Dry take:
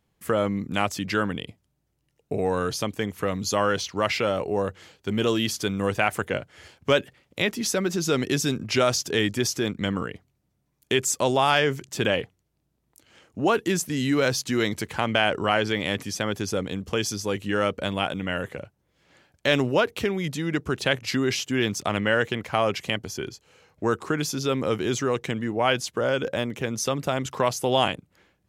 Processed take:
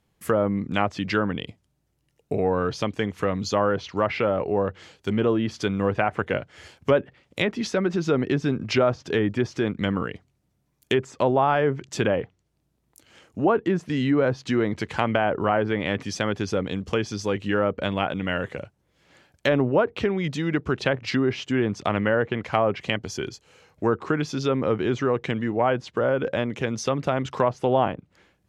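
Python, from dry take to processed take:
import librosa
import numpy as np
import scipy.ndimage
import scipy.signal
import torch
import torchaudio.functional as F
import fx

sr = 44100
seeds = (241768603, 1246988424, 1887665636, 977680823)

y = fx.env_lowpass_down(x, sr, base_hz=1200.0, full_db=-19.0)
y = y * librosa.db_to_amplitude(2.0)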